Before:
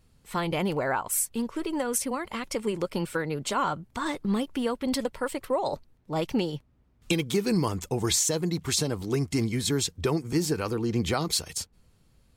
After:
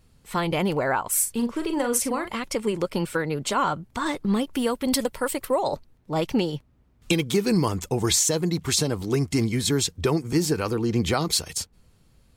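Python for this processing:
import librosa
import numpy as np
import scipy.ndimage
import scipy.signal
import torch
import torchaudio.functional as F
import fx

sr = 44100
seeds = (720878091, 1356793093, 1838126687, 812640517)

y = fx.doubler(x, sr, ms=42.0, db=-8.0, at=(1.11, 2.36))
y = fx.high_shelf(y, sr, hz=7600.0, db=11.5, at=(4.53, 5.63))
y = y * librosa.db_to_amplitude(3.5)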